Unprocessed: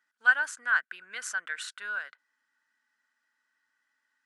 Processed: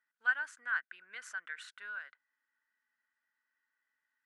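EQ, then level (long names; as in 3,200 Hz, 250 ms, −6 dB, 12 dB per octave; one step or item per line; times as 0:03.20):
bass and treble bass −3 dB, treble −7 dB
parametric band 2,000 Hz +3 dB 0.45 octaves
dynamic equaliser 540 Hz, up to −5 dB, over −45 dBFS, Q 1.1
−8.5 dB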